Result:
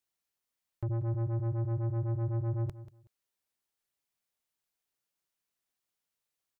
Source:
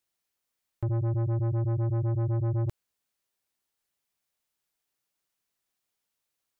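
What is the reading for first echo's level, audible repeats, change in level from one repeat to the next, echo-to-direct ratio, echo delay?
−15.0 dB, 2, −14.0 dB, −15.0 dB, 187 ms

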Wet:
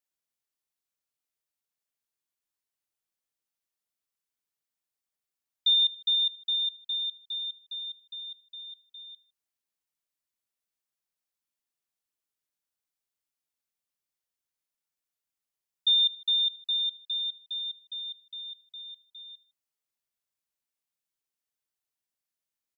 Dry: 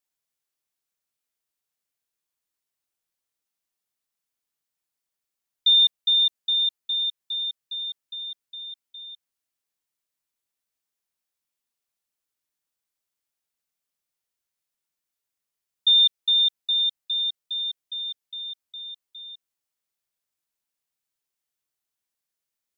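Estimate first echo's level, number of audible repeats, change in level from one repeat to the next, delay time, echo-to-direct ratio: −17.5 dB, 2, −8.5 dB, 78 ms, −17.0 dB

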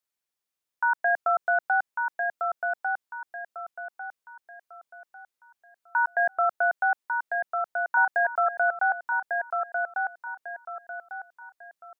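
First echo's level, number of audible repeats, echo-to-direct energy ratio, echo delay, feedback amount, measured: −4.5 dB, 4, −4.0 dB, 1,148 ms, 34%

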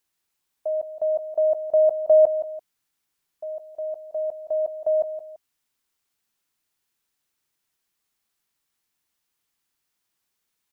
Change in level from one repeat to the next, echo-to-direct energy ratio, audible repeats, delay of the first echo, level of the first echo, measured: −9.0 dB, −11.5 dB, 2, 169 ms, −12.0 dB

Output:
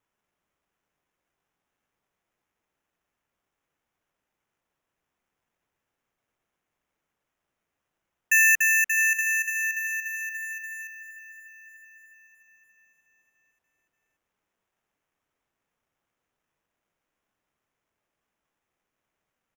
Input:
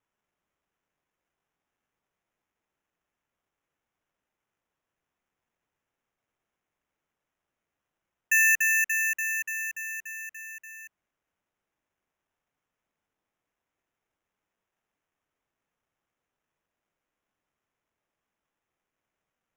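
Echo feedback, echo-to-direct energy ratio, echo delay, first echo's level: 49%, −14.0 dB, 659 ms, −15.0 dB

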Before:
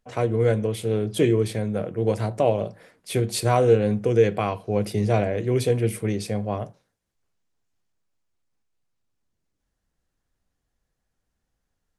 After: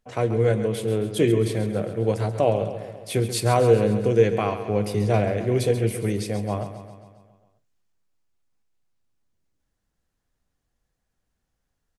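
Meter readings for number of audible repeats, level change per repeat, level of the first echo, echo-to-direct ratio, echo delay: 6, −4.5 dB, −11.0 dB, −9.0 dB, 135 ms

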